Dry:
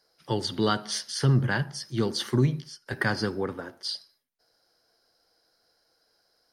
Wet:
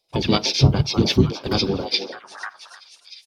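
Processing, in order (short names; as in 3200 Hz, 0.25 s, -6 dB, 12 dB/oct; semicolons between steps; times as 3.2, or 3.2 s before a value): gate -51 dBFS, range -12 dB; dynamic EQ 5300 Hz, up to +7 dB, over -49 dBFS, Q 3.8; granular stretch 0.5×, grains 0.1 s; on a send: delay with a stepping band-pass 0.306 s, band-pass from 640 Hz, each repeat 0.7 oct, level -4 dB; on the sum: envelope phaser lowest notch 270 Hz, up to 1800 Hz, full sweep at -31 dBFS; harmoniser -12 st -10 dB, -5 st -4 dB; gain +8.5 dB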